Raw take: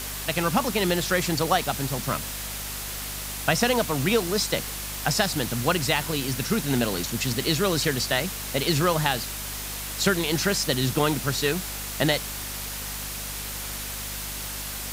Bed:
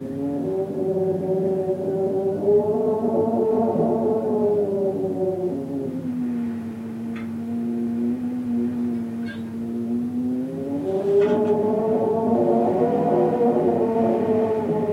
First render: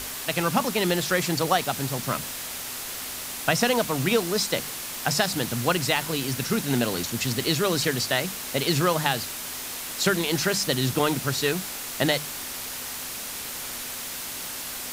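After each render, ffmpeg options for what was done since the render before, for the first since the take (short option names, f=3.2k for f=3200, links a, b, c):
-af "bandreject=f=50:t=h:w=6,bandreject=f=100:t=h:w=6,bandreject=f=150:t=h:w=6,bandreject=f=200:t=h:w=6"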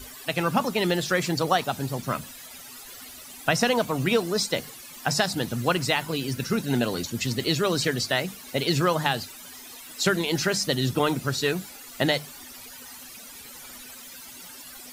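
-af "afftdn=nr=15:nf=-35"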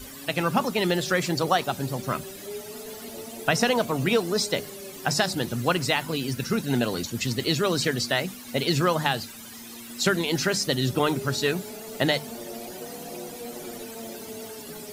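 -filter_complex "[1:a]volume=-19.5dB[a];[0:a][a]amix=inputs=2:normalize=0"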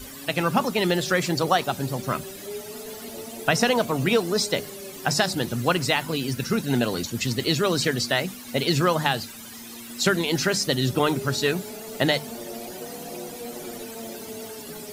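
-af "volume=1.5dB"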